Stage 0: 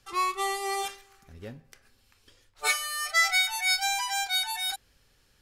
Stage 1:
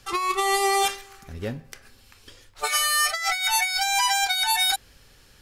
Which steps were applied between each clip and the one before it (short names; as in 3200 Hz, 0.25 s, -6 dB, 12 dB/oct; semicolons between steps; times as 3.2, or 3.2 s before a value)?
negative-ratio compressor -31 dBFS, ratio -1; gain +8 dB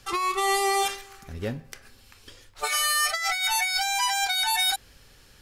limiter -15.5 dBFS, peak gain reduction 5.5 dB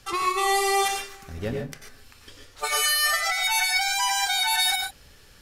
reverb, pre-delay 83 ms, DRR 2 dB